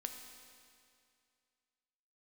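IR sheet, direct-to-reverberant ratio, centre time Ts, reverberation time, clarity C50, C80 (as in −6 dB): 4.0 dB, 47 ms, 2.3 s, 5.5 dB, 6.5 dB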